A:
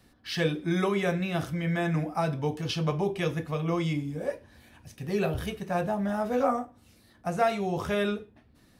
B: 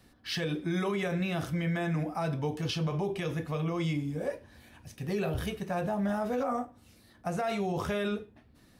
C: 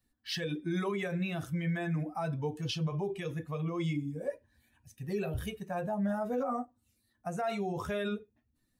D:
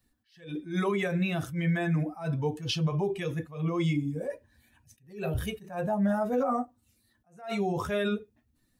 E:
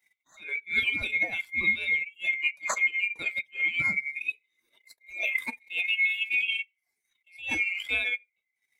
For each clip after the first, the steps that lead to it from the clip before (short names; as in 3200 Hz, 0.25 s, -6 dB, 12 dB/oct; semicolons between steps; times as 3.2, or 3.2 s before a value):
limiter -23 dBFS, peak gain reduction 10.5 dB
per-bin expansion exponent 1.5
attack slew limiter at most 140 dB/s; gain +5.5 dB
band-swap scrambler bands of 2000 Hz; transient shaper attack +9 dB, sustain -11 dB; gain -1.5 dB